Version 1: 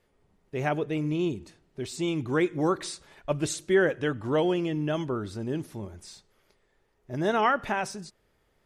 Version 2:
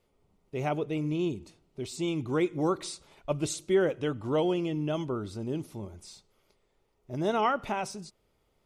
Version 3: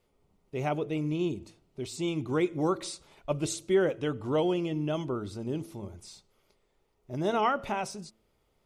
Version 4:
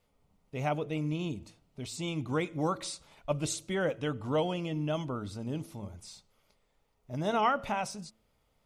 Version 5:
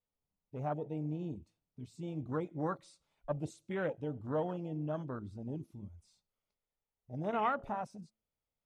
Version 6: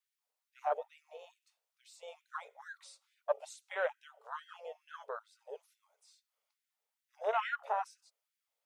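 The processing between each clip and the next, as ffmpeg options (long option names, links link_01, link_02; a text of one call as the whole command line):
ffmpeg -i in.wav -af "equalizer=frequency=1700:width=5.8:gain=-14,volume=-2dB" out.wav
ffmpeg -i in.wav -af "bandreject=frequency=110.4:width_type=h:width=4,bandreject=frequency=220.8:width_type=h:width=4,bandreject=frequency=331.2:width_type=h:width=4,bandreject=frequency=441.6:width_type=h:width=4,bandreject=frequency=552:width_type=h:width=4,bandreject=frequency=662.4:width_type=h:width=4" out.wav
ffmpeg -i in.wav -af "equalizer=frequency=370:width=5.1:gain=-13.5" out.wav
ffmpeg -i in.wav -af "afwtdn=0.0178,volume=-5dB" out.wav
ffmpeg -i in.wav -af "afftfilt=real='re*gte(b*sr/1024,400*pow(1500/400,0.5+0.5*sin(2*PI*2.3*pts/sr)))':imag='im*gte(b*sr/1024,400*pow(1500/400,0.5+0.5*sin(2*PI*2.3*pts/sr)))':win_size=1024:overlap=0.75,volume=5dB" out.wav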